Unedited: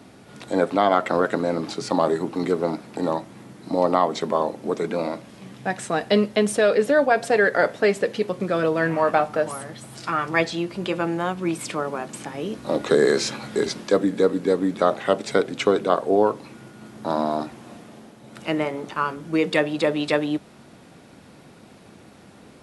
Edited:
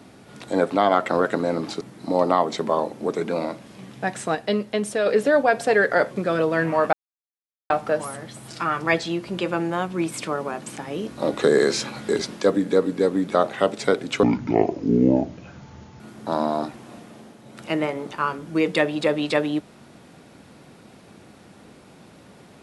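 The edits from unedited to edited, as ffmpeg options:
-filter_complex "[0:a]asplit=8[s0][s1][s2][s3][s4][s5][s6][s7];[s0]atrim=end=1.812[s8];[s1]atrim=start=3.438:end=5.982[s9];[s2]atrim=start=5.978:end=6.692,asetpts=PTS-STARTPTS,volume=0.596[s10];[s3]atrim=start=6.688:end=7.742[s11];[s4]atrim=start=8.348:end=9.17,asetpts=PTS-STARTPTS,afade=t=out:st=0.818:d=0.004:c=hsin,apad=pad_dur=0.77[s12];[s5]atrim=start=9.17:end=15.704,asetpts=PTS-STARTPTS,afade=t=in:d=0.004:c=hsin[s13];[s6]atrim=start=15.7:end=16.78,asetpts=PTS-STARTPTS,asetrate=26901,aresample=44100[s14];[s7]atrim=start=16.776[s15];[s8][s9]acrossfade=d=0.004:c1=hsin:c2=hsin[s16];[s16][s10]acrossfade=d=0.004:c1=hsin:c2=hsin[s17];[s17][s11]acrossfade=d=0.004:c1=hsin:c2=hsin[s18];[s12][s13]concat=n=2:v=0:a=1[s19];[s18][s19]acrossfade=d=0.004:c1=hsin:c2=hsin[s20];[s20][s14]acrossfade=d=0.004:c1=hsin:c2=hsin[s21];[s21][s15]acrossfade=d=0.004:c1=hsin:c2=hsin"

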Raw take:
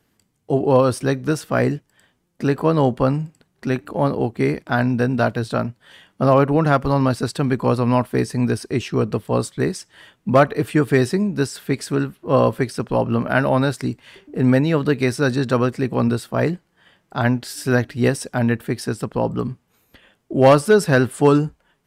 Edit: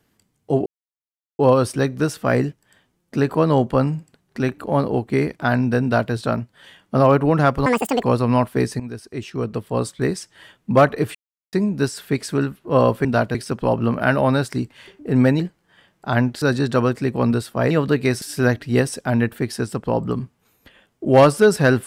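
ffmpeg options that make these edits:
-filter_complex "[0:a]asplit=13[s0][s1][s2][s3][s4][s5][s6][s7][s8][s9][s10][s11][s12];[s0]atrim=end=0.66,asetpts=PTS-STARTPTS,afade=t=out:st=0.656:d=0.004:c=hsin,apad=pad_dur=0.73[s13];[s1]atrim=start=0.66:end=6.934,asetpts=PTS-STARTPTS,afade=t=in:d=0.004:c=hsin[s14];[s2]atrim=start=6.93:end=7.61,asetpts=PTS-STARTPTS,asetrate=81585,aresample=44100[s15];[s3]atrim=start=7.606:end=8.38,asetpts=PTS-STARTPTS,afade=t=out:st=0.77:d=0.004:c=hsin:silence=0.177828[s16];[s4]atrim=start=8.38:end=10.73,asetpts=PTS-STARTPTS,afade=t=in:d=1.32:silence=0.177828,afade=t=out:st=2.346:d=0.004:c=hsin[s17];[s5]atrim=start=10.73:end=11.11,asetpts=PTS-STARTPTS,volume=0[s18];[s6]atrim=start=11.11:end=12.632,asetpts=PTS-STARTPTS,afade=t=in:d=0.004:c=hsin[s19];[s7]atrim=start=5.098:end=5.402[s20];[s8]atrim=start=12.628:end=14.682[s21];[s9]atrim=start=16.478:end=17.502[s22];[s10]atrim=start=15.188:end=16.482[s23];[s11]atrim=start=14.678:end=15.192[s24];[s12]atrim=start=17.498[s25];[s13][s14]concat=n=2:v=0:a=1[s26];[s26][s15]acrossfade=d=0.004:c1=hsin:c2=hsin[s27];[s16][s17][s18][s19]concat=n=4:v=0:a=1[s28];[s27][s28]acrossfade=d=0.004:c1=hsin:c2=hsin[s29];[s29][s20]acrossfade=d=0.004:c1=hsin:c2=hsin[s30];[s30][s21]acrossfade=d=0.004:c1=hsin:c2=hsin[s31];[s31][s22]acrossfade=d=0.004:c1=hsin:c2=hsin[s32];[s32][s23]acrossfade=d=0.004:c1=hsin:c2=hsin[s33];[s33][s24]acrossfade=d=0.004:c1=hsin:c2=hsin[s34];[s34][s25]acrossfade=d=0.004:c1=hsin:c2=hsin"

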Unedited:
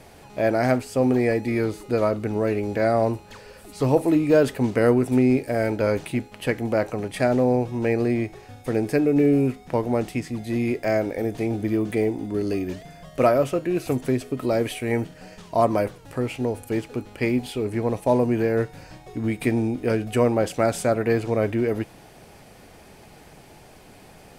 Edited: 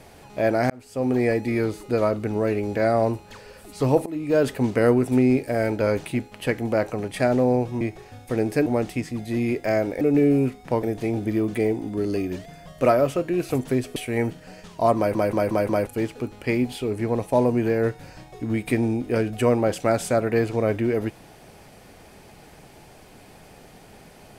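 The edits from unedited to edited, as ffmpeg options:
-filter_complex "[0:a]asplit=13[s0][s1][s2][s3][s4][s5][s6][s7][s8][s9][s10][s11][s12];[s0]atrim=end=0.7,asetpts=PTS-STARTPTS,afade=t=out:st=0.696:d=0.004:c=hsin[s13];[s1]atrim=start=0.7:end=4.06,asetpts=PTS-STARTPTS,afade=t=in:d=0.53,afade=t=out:st=3.356:d=0.004:c=hsin:silence=0.105925[s14];[s2]atrim=start=4.06:end=7.812,asetpts=PTS-STARTPTS,afade=t=in:d=0.44:silence=0.105925[s15];[s3]atrim=start=8.178:end=9.032[s16];[s4]atrim=start=9.848:end=11.202[s17];[s5]atrim=start=9.028:end=9.852[s18];[s6]atrim=start=11.198:end=14.332[s19];[s7]atrim=start=14.698:end=15.892[s20];[s8]atrim=start=15.708:end=15.892[s21];[s9]atrim=start=15.708:end=15.892[s22];[s10]atrim=start=15.708:end=15.892[s23];[s11]atrim=start=15.708:end=15.892[s24];[s12]atrim=start=16.608[s25];[s13][s14][s15]concat=n=3:v=0:a=1[s26];[s26][s16]acrossfade=d=0.004:c1=hsin:c2=hsin[s27];[s27][s17]acrossfade=d=0.004:c1=hsin:c2=hsin[s28];[s28][s18]acrossfade=d=0.004:c1=hsin:c2=hsin[s29];[s29][s19]acrossfade=d=0.004:c1=hsin:c2=hsin[s30];[s30][s20]acrossfade=d=0.004:c1=hsin:c2=hsin[s31];[s31][s21]acrossfade=d=0.004:c1=hsin:c2=hsin[s32];[s32][s22]acrossfade=d=0.004:c1=hsin:c2=hsin[s33];[s33][s23]acrossfade=d=0.004:c1=hsin:c2=hsin[s34];[s34][s24]acrossfade=d=0.004:c1=hsin:c2=hsin[s35];[s35][s25]acrossfade=d=0.004:c1=hsin:c2=hsin"

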